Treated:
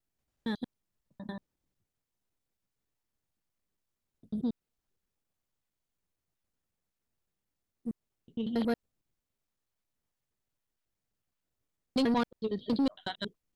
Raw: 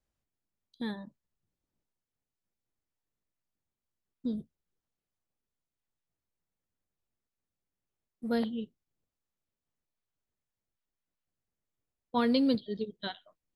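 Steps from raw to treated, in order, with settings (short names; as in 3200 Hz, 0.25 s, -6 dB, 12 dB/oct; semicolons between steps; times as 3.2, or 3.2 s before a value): slices in reverse order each 92 ms, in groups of 5; soft clip -25.5 dBFS, distortion -14 dB; gain +3 dB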